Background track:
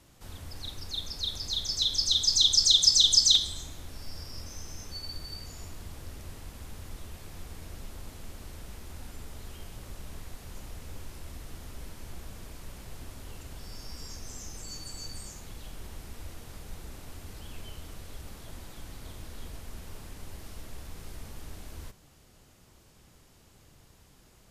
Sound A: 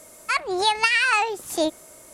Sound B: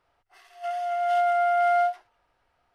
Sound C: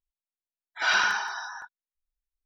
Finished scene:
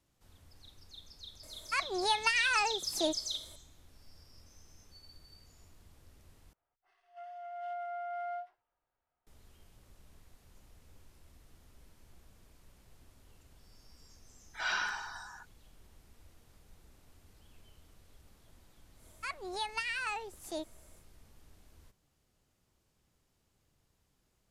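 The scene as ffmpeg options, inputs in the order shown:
ffmpeg -i bed.wav -i cue0.wav -i cue1.wav -i cue2.wav -filter_complex "[1:a]asplit=2[link_01][link_02];[0:a]volume=-17dB[link_03];[2:a]lowpass=frequency=2100:poles=1[link_04];[link_03]asplit=2[link_05][link_06];[link_05]atrim=end=6.534[link_07];[link_04]atrim=end=2.74,asetpts=PTS-STARTPTS,volume=-17dB[link_08];[link_06]atrim=start=9.266[link_09];[link_01]atrim=end=2.13,asetpts=PTS-STARTPTS,volume=-9.5dB,afade=type=in:duration=0.004:curve=hsin,afade=type=out:start_time=2.126:duration=0.004:curve=hsin,adelay=1430[link_10];[3:a]atrim=end=2.45,asetpts=PTS-STARTPTS,volume=-10.5dB,afade=type=in:duration=0.004:curve=hsin,afade=type=out:start_time=2.446:duration=0.004:curve=hsin,adelay=13780[link_11];[link_02]atrim=end=2.13,asetpts=PTS-STARTPTS,volume=-16.5dB,afade=type=in:duration=0.1,afade=type=out:start_time=2.03:duration=0.1,adelay=18940[link_12];[link_07][link_08]acrossfade=duration=0.004:curve1=hsin:curve2=hsin[link_13];[link_13][link_09]acrossfade=duration=0.004:curve1=hsin:curve2=hsin[link_14];[link_14][link_10][link_11][link_12]amix=inputs=4:normalize=0" out.wav

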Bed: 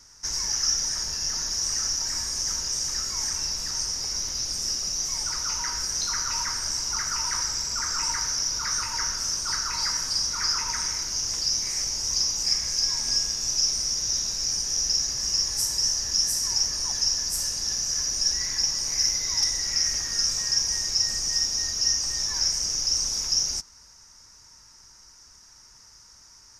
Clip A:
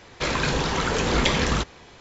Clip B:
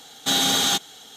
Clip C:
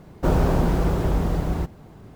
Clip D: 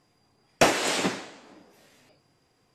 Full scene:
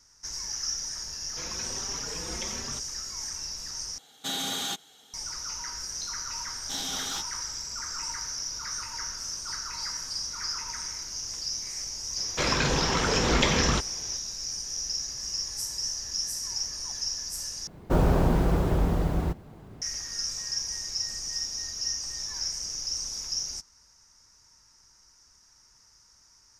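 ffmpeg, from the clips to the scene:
ffmpeg -i bed.wav -i cue0.wav -i cue1.wav -i cue2.wav -filter_complex "[1:a]asplit=2[link_01][link_02];[2:a]asplit=2[link_03][link_04];[0:a]volume=-7.5dB[link_05];[link_01]asplit=2[link_06][link_07];[link_07]adelay=4.5,afreqshift=1.2[link_08];[link_06][link_08]amix=inputs=2:normalize=1[link_09];[link_04]flanger=delay=15.5:depth=7.6:speed=2.4[link_10];[link_05]asplit=3[link_11][link_12][link_13];[link_11]atrim=end=3.984[link_14];[link_03]atrim=end=1.16,asetpts=PTS-STARTPTS,volume=-11dB[link_15];[link_12]atrim=start=5.136:end=17.674[link_16];[3:a]atrim=end=2.15,asetpts=PTS-STARTPTS,volume=-2.5dB[link_17];[link_13]atrim=start=19.816[link_18];[link_09]atrim=end=2,asetpts=PTS-STARTPTS,volume=-14.5dB,afade=type=in:duration=0.004:curve=hsin,afade=type=out:start_time=1.996:duration=0.004:curve=hsin,adelay=1160[link_19];[link_10]atrim=end=1.16,asetpts=PTS-STARTPTS,volume=-12dB,afade=type=in:duration=0.004:curve=hsin,afade=type=out:start_time=1.156:duration=0.004:curve=hsin,adelay=6430[link_20];[link_02]atrim=end=2,asetpts=PTS-STARTPTS,volume=-2dB,afade=type=in:duration=0.004:curve=hsin,afade=type=out:start_time=1.996:duration=0.004:curve=hsin,adelay=12170[link_21];[link_14][link_15]acrossfade=duration=0.004:curve1=hsin:curve2=hsin[link_22];[link_22][link_16]acrossfade=duration=0.004:curve1=hsin:curve2=hsin[link_23];[link_23][link_17]acrossfade=duration=0.004:curve1=hsin:curve2=hsin[link_24];[link_24][link_18]acrossfade=duration=0.004:curve1=hsin:curve2=hsin[link_25];[link_25][link_19][link_20][link_21]amix=inputs=4:normalize=0" out.wav

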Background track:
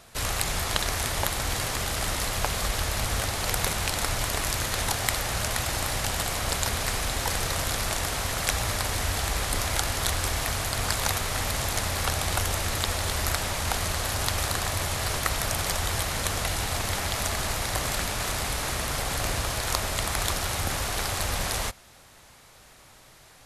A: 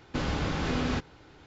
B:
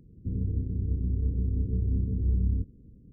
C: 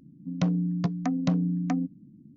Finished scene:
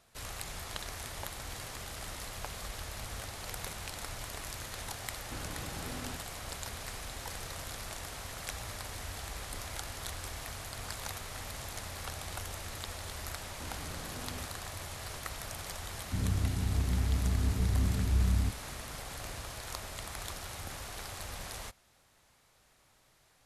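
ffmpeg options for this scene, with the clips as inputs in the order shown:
ffmpeg -i bed.wav -i cue0.wav -i cue1.wav -filter_complex "[1:a]asplit=2[link_01][link_02];[0:a]volume=-14dB[link_03];[link_02]asoftclip=type=tanh:threshold=-28.5dB[link_04];[link_01]atrim=end=1.46,asetpts=PTS-STARTPTS,volume=-14.5dB,afade=type=in:duration=0.004:curve=hsin,afade=type=out:start_time=1.456:duration=0.004:curve=hsin,adelay=227997S[link_05];[link_04]atrim=end=1.46,asetpts=PTS-STARTPTS,volume=-13.5dB,afade=type=in:duration=0.004:curve=hsin,afade=type=out:start_time=1.456:duration=0.004:curve=hsin,adelay=13460[link_06];[2:a]atrim=end=3.12,asetpts=PTS-STARTPTS,volume=-2dB,afade=type=in:duration=0.004:curve=hsin,afade=type=out:start_time=3.116:duration=0.004:curve=hsin,adelay=15870[link_07];[link_03][link_05][link_06][link_07]amix=inputs=4:normalize=0" out.wav

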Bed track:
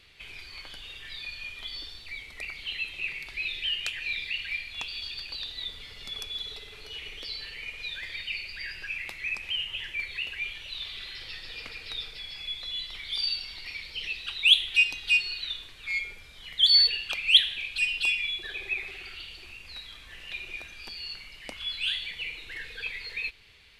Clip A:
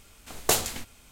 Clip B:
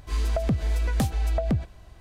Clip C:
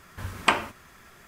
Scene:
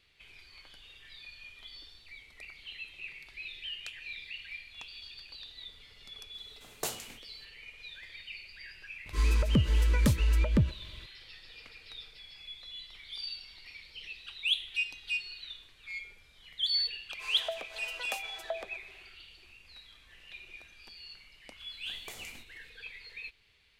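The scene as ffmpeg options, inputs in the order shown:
ffmpeg -i bed.wav -i cue0.wav -i cue1.wav -filter_complex "[1:a]asplit=2[link_01][link_02];[2:a]asplit=2[link_03][link_04];[0:a]volume=-10.5dB[link_05];[link_01]highpass=frequency=100:width=0.5412,highpass=frequency=100:width=1.3066[link_06];[link_03]asuperstop=centerf=730:order=20:qfactor=3.4[link_07];[link_04]highpass=frequency=550:width=0.5412,highpass=frequency=550:width=1.3066[link_08];[link_02]acompressor=threshold=-28dB:ratio=6:attack=3.2:release=140:knee=1:detection=peak[link_09];[link_06]atrim=end=1.11,asetpts=PTS-STARTPTS,volume=-12.5dB,afade=type=in:duration=0.004:curve=hsin,afade=type=out:start_time=1.106:duration=0.004:curve=hsin,adelay=279594S[link_10];[link_07]atrim=end=2,asetpts=PTS-STARTPTS,volume=-0.5dB,afade=type=in:duration=0.004:curve=hsin,afade=type=out:start_time=1.996:duration=0.004:curve=hsin,adelay=399546S[link_11];[link_08]atrim=end=2,asetpts=PTS-STARTPTS,volume=-6dB,afade=type=in:duration=0.1,afade=type=out:start_time=1.9:duration=0.1,adelay=17120[link_12];[link_09]atrim=end=1.11,asetpts=PTS-STARTPTS,volume=-15dB,afade=type=in:duration=0.004:curve=hsin,afade=type=out:start_time=1.106:duration=0.004:curve=hsin,adelay=21590[link_13];[link_05][link_10][link_11][link_12][link_13]amix=inputs=5:normalize=0" out.wav

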